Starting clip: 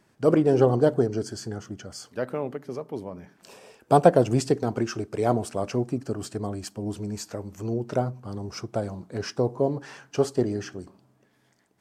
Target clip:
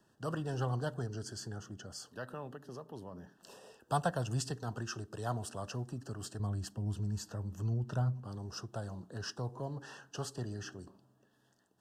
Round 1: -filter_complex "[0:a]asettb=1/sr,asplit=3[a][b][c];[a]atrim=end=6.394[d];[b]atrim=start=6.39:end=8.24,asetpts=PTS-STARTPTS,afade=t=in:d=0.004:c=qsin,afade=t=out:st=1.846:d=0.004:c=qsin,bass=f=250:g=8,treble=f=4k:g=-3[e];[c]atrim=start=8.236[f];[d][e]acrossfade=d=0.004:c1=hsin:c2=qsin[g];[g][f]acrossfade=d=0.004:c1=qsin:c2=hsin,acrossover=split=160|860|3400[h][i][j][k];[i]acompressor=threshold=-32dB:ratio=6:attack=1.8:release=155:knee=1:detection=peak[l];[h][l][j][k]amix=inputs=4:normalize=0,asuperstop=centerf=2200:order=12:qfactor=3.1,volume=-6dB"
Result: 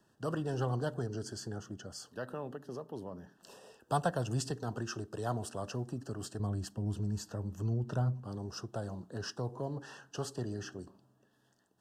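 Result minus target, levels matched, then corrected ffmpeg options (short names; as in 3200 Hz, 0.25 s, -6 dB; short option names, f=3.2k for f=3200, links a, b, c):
compressor: peak gain reduction -6 dB
-filter_complex "[0:a]asettb=1/sr,asplit=3[a][b][c];[a]atrim=end=6.394[d];[b]atrim=start=6.39:end=8.24,asetpts=PTS-STARTPTS,afade=t=in:d=0.004:c=qsin,afade=t=out:st=1.846:d=0.004:c=qsin,bass=f=250:g=8,treble=f=4k:g=-3[e];[c]atrim=start=8.236[f];[d][e]acrossfade=d=0.004:c1=hsin:c2=qsin[g];[g][f]acrossfade=d=0.004:c1=qsin:c2=hsin,acrossover=split=160|860|3400[h][i][j][k];[i]acompressor=threshold=-39.5dB:ratio=6:attack=1.8:release=155:knee=1:detection=peak[l];[h][l][j][k]amix=inputs=4:normalize=0,asuperstop=centerf=2200:order=12:qfactor=3.1,volume=-6dB"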